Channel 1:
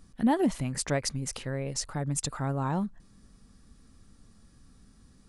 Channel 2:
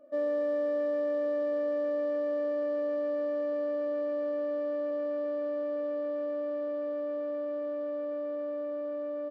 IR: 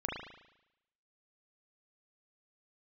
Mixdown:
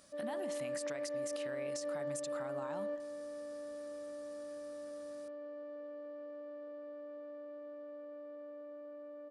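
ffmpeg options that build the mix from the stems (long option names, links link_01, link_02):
-filter_complex "[0:a]highpass=frequency=1300:poles=1,acompressor=threshold=-46dB:ratio=2.5,volume=3dB,asplit=3[link_01][link_02][link_03];[link_02]volume=-17dB[link_04];[1:a]volume=-7.5dB,asplit=2[link_05][link_06];[link_06]volume=-20dB[link_07];[link_03]apad=whole_len=410203[link_08];[link_05][link_08]sidechaingate=range=-7dB:threshold=-59dB:ratio=16:detection=peak[link_09];[2:a]atrim=start_sample=2205[link_10];[link_04][link_07]amix=inputs=2:normalize=0[link_11];[link_11][link_10]afir=irnorm=-1:irlink=0[link_12];[link_01][link_09][link_12]amix=inputs=3:normalize=0,alimiter=level_in=7.5dB:limit=-24dB:level=0:latency=1:release=72,volume=-7.5dB"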